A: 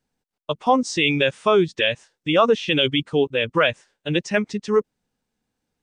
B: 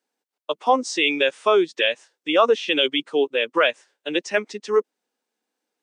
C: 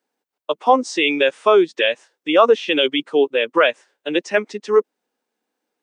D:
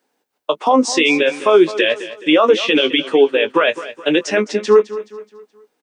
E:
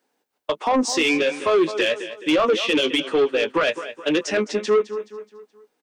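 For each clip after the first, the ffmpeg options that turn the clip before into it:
-af "highpass=f=300:w=0.5412,highpass=f=300:w=1.3066"
-af "equalizer=f=6.9k:w=0.36:g=-5.5,volume=4.5dB"
-filter_complex "[0:a]alimiter=limit=-13dB:level=0:latency=1:release=36,asplit=2[a][b];[b]adelay=19,volume=-10dB[c];[a][c]amix=inputs=2:normalize=0,aecho=1:1:212|424|636|848:0.178|0.0747|0.0314|0.0132,volume=8.5dB"
-af "asoftclip=type=tanh:threshold=-10dB,volume=-3dB"

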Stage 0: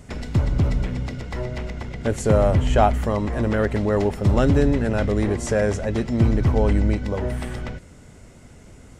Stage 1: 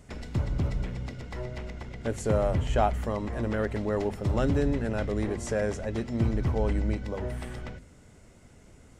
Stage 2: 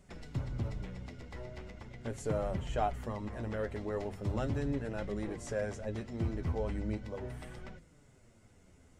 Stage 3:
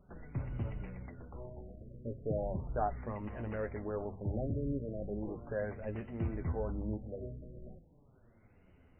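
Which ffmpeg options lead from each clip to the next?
-af "bandreject=f=50:t=h:w=6,bandreject=f=100:t=h:w=6,bandreject=f=150:t=h:w=6,bandreject=f=200:t=h:w=6,bandreject=f=250:t=h:w=6,volume=-7.5dB"
-af "flanger=delay=5.1:depth=7.4:regen=39:speed=0.39:shape=triangular,volume=-4dB"
-af "afftfilt=real='re*lt(b*sr/1024,630*pow(3100/630,0.5+0.5*sin(2*PI*0.37*pts/sr)))':imag='im*lt(b*sr/1024,630*pow(3100/630,0.5+0.5*sin(2*PI*0.37*pts/sr)))':win_size=1024:overlap=0.75,volume=-1.5dB"

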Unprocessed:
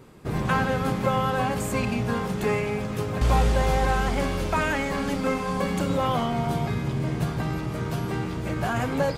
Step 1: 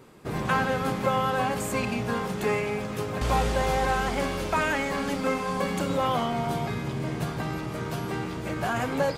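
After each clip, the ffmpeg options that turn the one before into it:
-af "lowshelf=f=160:g=-8.5"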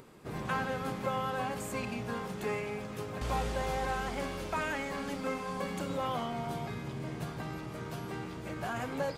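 -af "acompressor=mode=upward:threshold=-40dB:ratio=2.5,volume=-8.5dB"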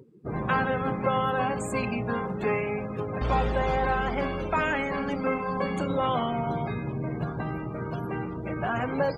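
-af "afftdn=nr=31:nf=-45,volume=8dB"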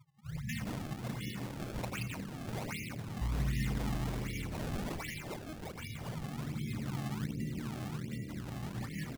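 -filter_complex "[0:a]afftfilt=real='re*(1-between(b*sr/4096,170,1700))':imag='im*(1-between(b*sr/4096,170,1700))':win_size=4096:overlap=0.75,asplit=8[a][b][c][d][e][f][g][h];[b]adelay=177,afreqshift=75,volume=-3dB[i];[c]adelay=354,afreqshift=150,volume=-8.7dB[j];[d]adelay=531,afreqshift=225,volume=-14.4dB[k];[e]adelay=708,afreqshift=300,volume=-20dB[l];[f]adelay=885,afreqshift=375,volume=-25.7dB[m];[g]adelay=1062,afreqshift=450,volume=-31.4dB[n];[h]adelay=1239,afreqshift=525,volume=-37.1dB[o];[a][i][j][k][l][m][n][o]amix=inputs=8:normalize=0,acrusher=samples=26:mix=1:aa=0.000001:lfo=1:lforange=41.6:lforate=1.3,volume=-5.5dB"

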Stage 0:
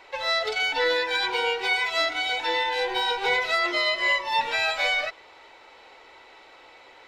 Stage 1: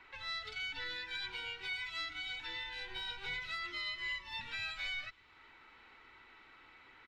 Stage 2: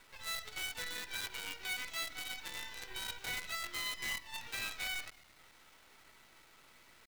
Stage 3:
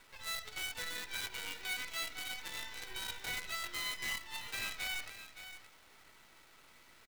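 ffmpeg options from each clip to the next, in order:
-filter_complex "[0:a]firequalizer=gain_entry='entry(220,0);entry(550,-19);entry(1300,-2);entry(5200,-16);entry(11000,-19)':delay=0.05:min_phase=1,acrossover=split=160|3000[a][b][c];[b]acompressor=threshold=-58dB:ratio=2[d];[a][d][c]amix=inputs=3:normalize=0,volume=-1dB"
-filter_complex "[0:a]asplit=6[a][b][c][d][e][f];[b]adelay=110,afreqshift=-41,volume=-17.5dB[g];[c]adelay=220,afreqshift=-82,volume=-22.5dB[h];[d]adelay=330,afreqshift=-123,volume=-27.6dB[i];[e]adelay=440,afreqshift=-164,volume=-32.6dB[j];[f]adelay=550,afreqshift=-205,volume=-37.6dB[k];[a][g][h][i][j][k]amix=inputs=6:normalize=0,acrusher=bits=7:dc=4:mix=0:aa=0.000001"
-af "aecho=1:1:569:0.266"

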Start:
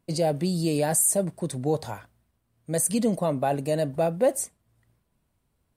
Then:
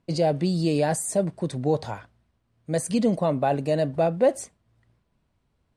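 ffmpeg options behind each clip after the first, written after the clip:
-af "lowpass=5.4k,volume=2dB"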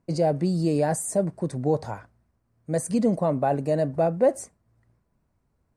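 -af "equalizer=f=3.3k:w=1.5:g=-12.5"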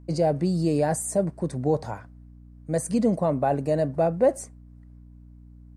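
-af "aeval=exprs='val(0)+0.00501*(sin(2*PI*60*n/s)+sin(2*PI*2*60*n/s)/2+sin(2*PI*3*60*n/s)/3+sin(2*PI*4*60*n/s)/4+sin(2*PI*5*60*n/s)/5)':c=same"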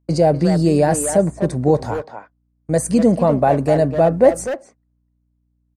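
-filter_complex "[0:a]agate=range=-26dB:threshold=-37dB:ratio=16:detection=peak,asplit=2[a][b];[b]adelay=250,highpass=300,lowpass=3.4k,asoftclip=type=hard:threshold=-20.5dB,volume=-7dB[c];[a][c]amix=inputs=2:normalize=0,volume=8dB"

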